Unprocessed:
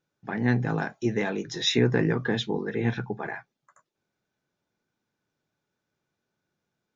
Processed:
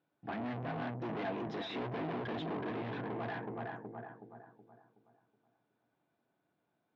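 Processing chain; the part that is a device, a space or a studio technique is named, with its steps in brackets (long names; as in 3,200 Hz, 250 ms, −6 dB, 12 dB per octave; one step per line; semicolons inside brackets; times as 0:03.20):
analogue delay pedal into a guitar amplifier (bucket-brigade delay 372 ms, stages 4,096, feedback 40%, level −6.5 dB; tube saturation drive 38 dB, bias 0.4; loudspeaker in its box 100–3,600 Hz, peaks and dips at 290 Hz +8 dB, 690 Hz +10 dB, 1,000 Hz +5 dB)
level −1.5 dB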